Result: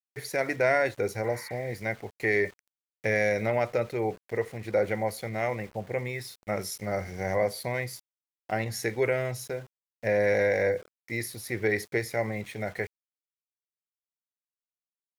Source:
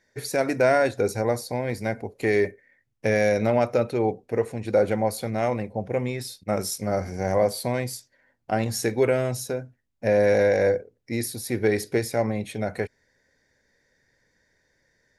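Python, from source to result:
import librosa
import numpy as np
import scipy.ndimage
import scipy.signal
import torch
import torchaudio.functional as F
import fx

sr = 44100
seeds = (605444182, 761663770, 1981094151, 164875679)

y = fx.graphic_eq_31(x, sr, hz=(250, 2000, 8000), db=(-8, 11, -6))
y = np.where(np.abs(y) >= 10.0 ** (-42.0 / 20.0), y, 0.0)
y = fx.spec_repair(y, sr, seeds[0], start_s=1.28, length_s=0.42, low_hz=860.0, high_hz=3800.0, source='both')
y = y * 10.0 ** (-5.0 / 20.0)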